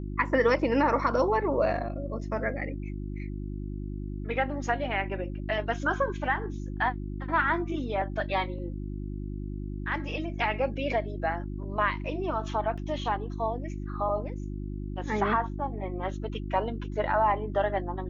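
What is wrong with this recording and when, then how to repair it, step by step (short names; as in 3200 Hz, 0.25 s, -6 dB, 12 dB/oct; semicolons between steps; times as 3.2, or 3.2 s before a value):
hum 50 Hz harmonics 7 -35 dBFS
12.77–12.78 gap 6.6 ms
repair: de-hum 50 Hz, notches 7; interpolate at 12.77, 6.6 ms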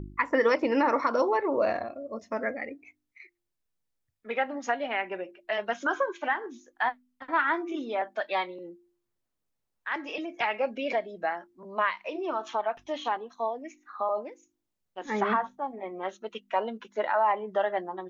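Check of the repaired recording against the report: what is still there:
none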